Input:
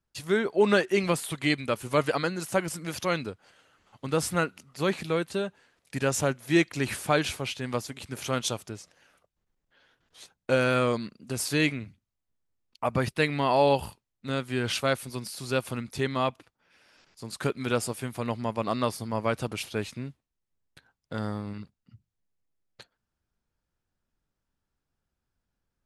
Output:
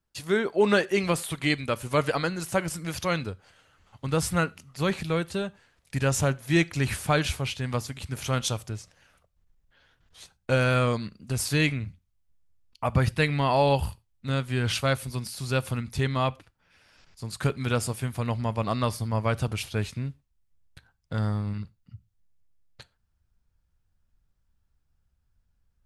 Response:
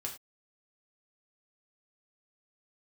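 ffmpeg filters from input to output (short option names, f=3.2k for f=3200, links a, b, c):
-filter_complex "[0:a]asubboost=boost=4.5:cutoff=130,asplit=2[a][b];[1:a]atrim=start_sample=2205[c];[b][c]afir=irnorm=-1:irlink=0,volume=-15dB[d];[a][d]amix=inputs=2:normalize=0"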